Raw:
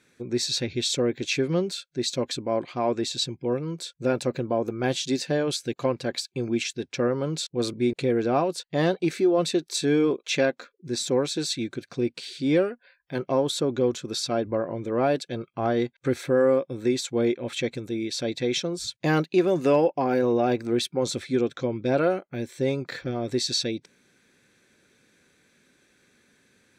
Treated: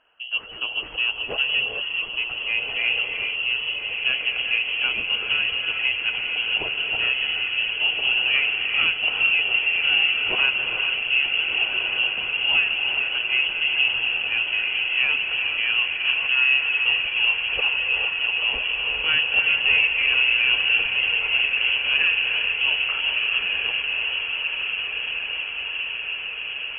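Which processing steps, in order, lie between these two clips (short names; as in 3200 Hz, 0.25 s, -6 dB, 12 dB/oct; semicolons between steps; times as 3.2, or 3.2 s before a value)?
self-modulated delay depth 0.099 ms; inverted band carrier 3100 Hz; on a send: diffused feedback echo 1.49 s, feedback 71%, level -5 dB; on the sum: non-linear reverb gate 0.47 s rising, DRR 4 dB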